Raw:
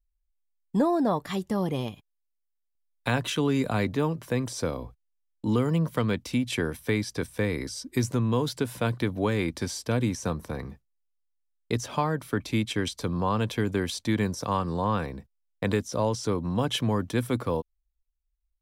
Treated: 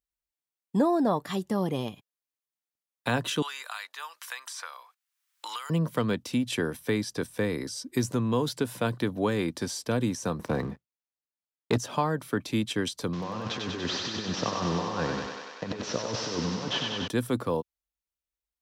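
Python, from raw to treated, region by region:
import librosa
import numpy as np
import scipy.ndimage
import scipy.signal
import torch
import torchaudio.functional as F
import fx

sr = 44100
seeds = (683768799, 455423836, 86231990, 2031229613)

y = fx.chain(x, sr, fx.highpass(hz=1100.0, slope=24),
    fx.band_squash(depth_pct=100), at=(3.42, 5.7))
y = fx.chain(y, sr, fx.lowpass(hz=3500.0, slope=6),
    fx.leveller(passes=2), at=(10.39, 11.78))
y = fx.chain(y, sr, fx.delta_mod(bps=32000, step_db=-35.5),
    fx.over_compress(threshold_db=-30.0, ratio=-0.5),
    fx.echo_thinned(ms=96, feedback_pct=78, hz=330.0, wet_db=-3.0), at=(13.13, 17.08))
y = scipy.signal.sosfilt(scipy.signal.butter(2, 130.0, 'highpass', fs=sr, output='sos'), y)
y = fx.dynamic_eq(y, sr, hz=2200.0, q=6.9, threshold_db=-54.0, ratio=4.0, max_db=-7)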